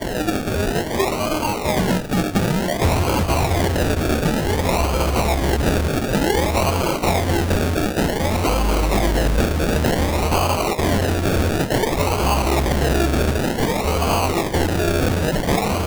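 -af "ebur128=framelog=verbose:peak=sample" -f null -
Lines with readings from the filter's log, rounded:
Integrated loudness:
  I:         -19.6 LUFS
  Threshold: -29.6 LUFS
Loudness range:
  LRA:         0.5 LU
  Threshold: -39.5 LUFS
  LRA low:   -19.8 LUFS
  LRA high:  -19.3 LUFS
Sample peak:
  Peak:       -8.5 dBFS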